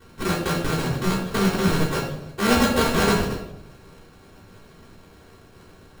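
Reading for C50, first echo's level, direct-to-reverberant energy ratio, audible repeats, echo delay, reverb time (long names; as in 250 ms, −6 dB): 5.0 dB, no echo audible, −6.5 dB, no echo audible, no echo audible, 0.85 s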